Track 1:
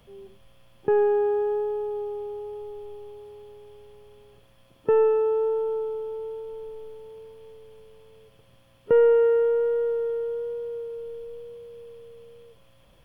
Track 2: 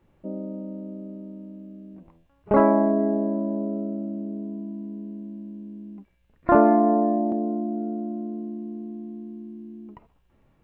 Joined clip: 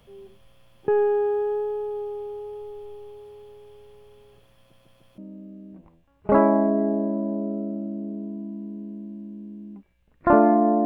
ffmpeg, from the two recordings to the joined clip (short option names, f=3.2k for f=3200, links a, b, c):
-filter_complex "[0:a]apad=whole_dur=10.85,atrim=end=10.85,asplit=4[a][b][c][d];[a]atrim=end=4.732[e];[b]atrim=start=4.578:end=4.732[f];[c]atrim=start=4.578:end=4.732[g];[d]atrim=start=4.578:end=4.732[h];[1:a]atrim=start=1.398:end=7.07[i];[e][f]acrossfade=d=0.004:c1=hsin:c2=hsin[j];[j][g]acrossfade=d=0.004:c1=hsin:c2=hsin[k];[k][h]acrossfade=d=0.004:c1=hsin:c2=hsin[l];[l][i]acrossfade=d=0.004:c1=hsin:c2=hsin"